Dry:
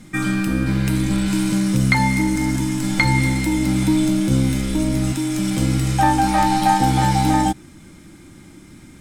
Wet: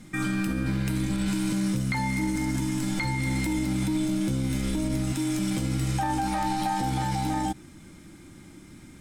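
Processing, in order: limiter -14.5 dBFS, peak gain reduction 11 dB; gain -4.5 dB

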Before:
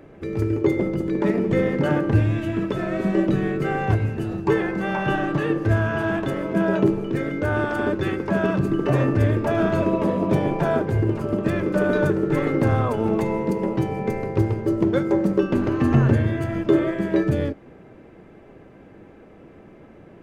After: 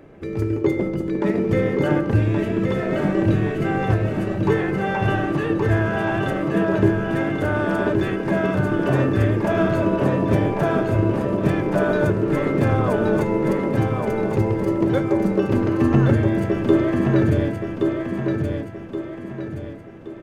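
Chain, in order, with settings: feedback echo 1.123 s, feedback 42%, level -4 dB

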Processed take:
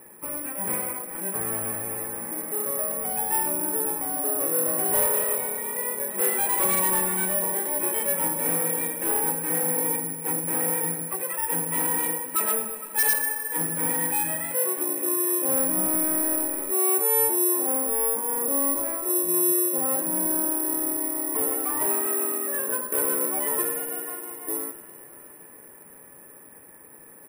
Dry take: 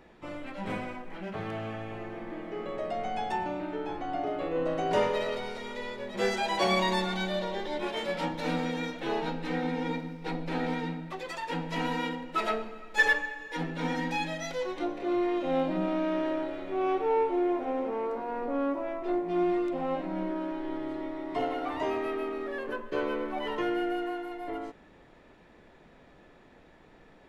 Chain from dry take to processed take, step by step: LPF 2400 Hz 24 dB/oct; low shelf 210 Hz -5.5 dB; notches 50/100/150/200/250/300/350 Hz; notch comb 700 Hz; soft clip -29.5 dBFS, distortion -11 dB; echo 98 ms -15 dB; on a send at -13 dB: reverb RT60 5.5 s, pre-delay 46 ms; on the sum: careless resampling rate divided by 4×, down none, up zero stuff; gain +5 dB

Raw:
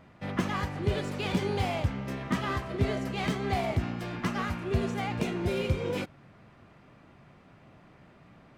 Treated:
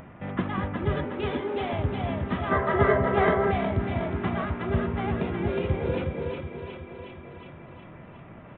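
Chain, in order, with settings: Wiener smoothing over 9 samples; on a send: split-band echo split 390 Hz, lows 0.189 s, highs 0.363 s, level -5 dB; on the sum: dynamic EQ 2700 Hz, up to -4 dB, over -48 dBFS, Q 1.7; 1.04–1.73 Chebyshev high-pass 230 Hz, order 5; feedback echo 0.366 s, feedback 45%, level -7.5 dB; 2.51–3.51 spectral gain 350–2200 Hz +9 dB; downsampling 8000 Hz; in parallel at +1 dB: upward compressor, threshold -32 dBFS; on the sum: gain -5.5 dB

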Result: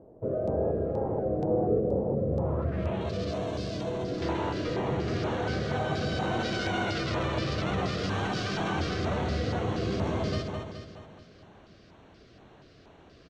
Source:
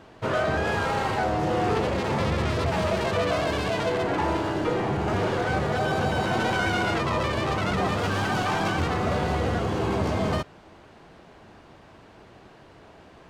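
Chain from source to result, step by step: low-pass sweep 540 Hz -> 5000 Hz, 2.26–3.15; feedback echo 0.211 s, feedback 52%, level -5.5 dB; LFO notch square 2.1 Hz 890–4900 Hz; bell 2000 Hz -8.5 dB 2.3 oct, from 1.8 s -15 dB, from 4.22 s -4 dB; gain -4.5 dB

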